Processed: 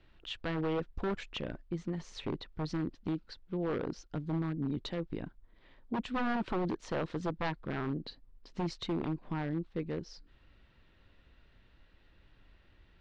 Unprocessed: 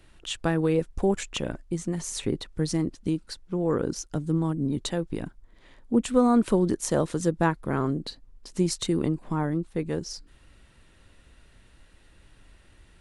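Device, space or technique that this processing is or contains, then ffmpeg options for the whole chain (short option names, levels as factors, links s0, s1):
synthesiser wavefolder: -af "aeval=exprs='0.106*(abs(mod(val(0)/0.106+3,4)-2)-1)':c=same,lowpass=f=4400:w=0.5412,lowpass=f=4400:w=1.3066,volume=0.447"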